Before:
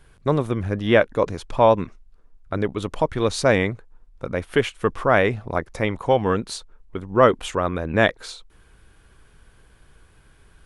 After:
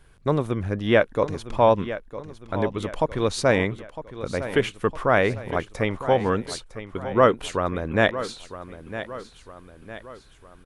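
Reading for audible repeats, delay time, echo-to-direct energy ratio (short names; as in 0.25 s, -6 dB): 3, 0.957 s, -12.0 dB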